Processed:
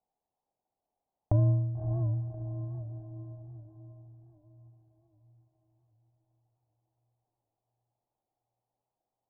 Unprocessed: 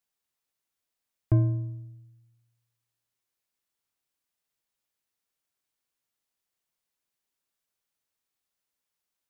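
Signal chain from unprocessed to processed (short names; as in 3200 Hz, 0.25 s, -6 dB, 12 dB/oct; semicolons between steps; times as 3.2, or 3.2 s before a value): Wiener smoothing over 25 samples; limiter -21 dBFS, peak gain reduction 8.5 dB; synth low-pass 780 Hz, resonance Q 4.9; diffused feedback echo 0.59 s, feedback 47%, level -6 dB; dynamic EQ 380 Hz, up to -7 dB, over -49 dBFS, Q 1.3; record warp 78 rpm, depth 100 cents; gain +3.5 dB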